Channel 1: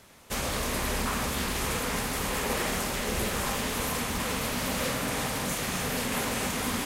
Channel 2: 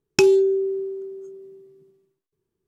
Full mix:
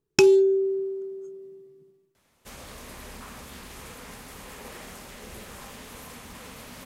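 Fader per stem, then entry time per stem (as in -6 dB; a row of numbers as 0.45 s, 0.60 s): -13.0 dB, -1.0 dB; 2.15 s, 0.00 s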